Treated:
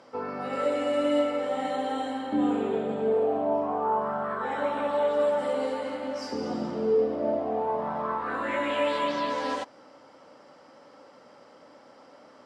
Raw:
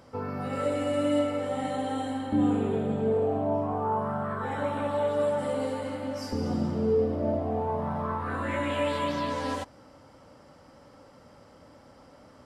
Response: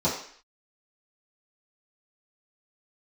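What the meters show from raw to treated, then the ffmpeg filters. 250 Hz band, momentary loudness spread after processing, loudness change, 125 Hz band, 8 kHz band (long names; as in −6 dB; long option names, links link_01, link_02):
−2.0 dB, 7 LU, +1.0 dB, −12.5 dB, can't be measured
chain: -af "highpass=300,lowpass=6300,volume=2.5dB"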